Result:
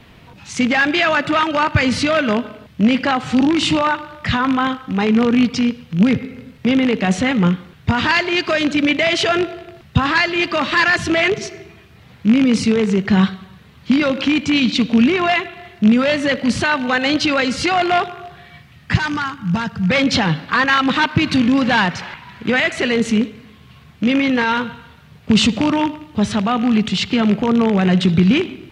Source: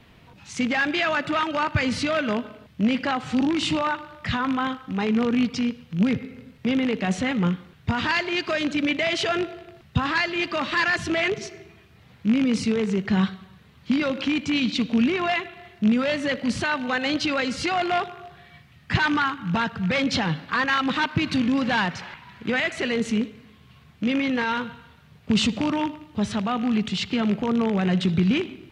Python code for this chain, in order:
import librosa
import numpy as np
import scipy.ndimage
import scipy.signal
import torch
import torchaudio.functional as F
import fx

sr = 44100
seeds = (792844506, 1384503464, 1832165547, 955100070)

y = fx.spec_box(x, sr, start_s=18.94, length_s=0.95, low_hz=230.0, high_hz=4400.0, gain_db=-7)
y = y * librosa.db_to_amplitude(7.5)